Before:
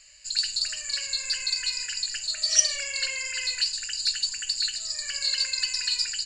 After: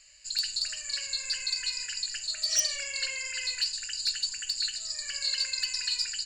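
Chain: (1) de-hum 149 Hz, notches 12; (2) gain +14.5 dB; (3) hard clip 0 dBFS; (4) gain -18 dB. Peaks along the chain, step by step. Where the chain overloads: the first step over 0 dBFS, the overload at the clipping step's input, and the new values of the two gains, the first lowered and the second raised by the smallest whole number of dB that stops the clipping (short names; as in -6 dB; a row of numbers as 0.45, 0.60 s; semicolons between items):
-4.5, +10.0, 0.0, -18.0 dBFS; step 2, 10.0 dB; step 2 +4.5 dB, step 4 -8 dB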